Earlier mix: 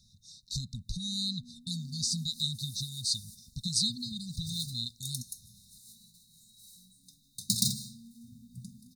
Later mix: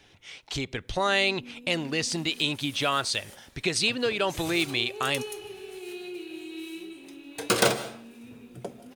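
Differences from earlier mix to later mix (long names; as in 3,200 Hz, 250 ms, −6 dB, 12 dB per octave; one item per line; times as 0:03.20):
first sound: remove high-frequency loss of the air 360 metres
master: remove linear-phase brick-wall band-stop 240–3,600 Hz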